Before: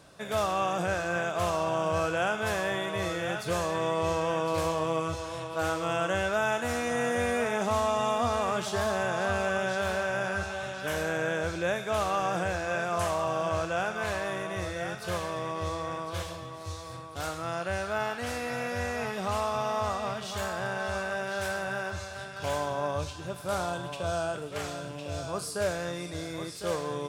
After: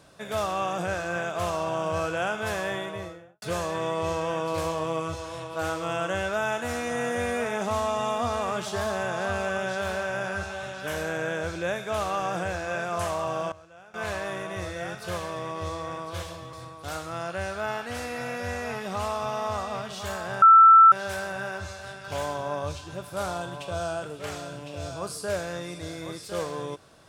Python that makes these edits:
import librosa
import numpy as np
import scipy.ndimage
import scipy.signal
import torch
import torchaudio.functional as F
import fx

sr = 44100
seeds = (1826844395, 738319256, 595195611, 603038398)

y = fx.studio_fade_out(x, sr, start_s=2.7, length_s=0.72)
y = fx.edit(y, sr, fx.fade_down_up(start_s=13.38, length_s=0.7, db=-20.5, fade_s=0.14, curve='log'),
    fx.cut(start_s=16.53, length_s=0.32),
    fx.bleep(start_s=20.74, length_s=0.5, hz=1330.0, db=-9.5), tone=tone)